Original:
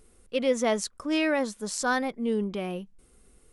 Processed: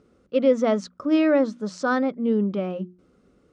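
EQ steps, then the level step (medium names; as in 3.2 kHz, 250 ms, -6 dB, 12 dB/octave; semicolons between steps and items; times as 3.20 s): cabinet simulation 110–5900 Hz, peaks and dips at 180 Hz +4 dB, 290 Hz +6 dB, 570 Hz +8 dB, 1.3 kHz +10 dB; bass shelf 480 Hz +11 dB; hum notches 60/120/180/240/300/360 Hz; -4.5 dB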